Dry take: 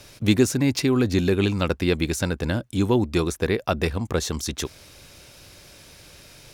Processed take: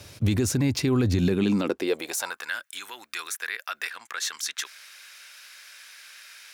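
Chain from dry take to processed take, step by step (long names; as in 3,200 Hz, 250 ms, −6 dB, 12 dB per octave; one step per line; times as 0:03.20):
0:01.87–0:03.91: high-shelf EQ 11,000 Hz +11 dB
brickwall limiter −17 dBFS, peak gain reduction 10.5 dB
high-pass filter sweep 79 Hz → 1,600 Hz, 0:01.04–0:02.52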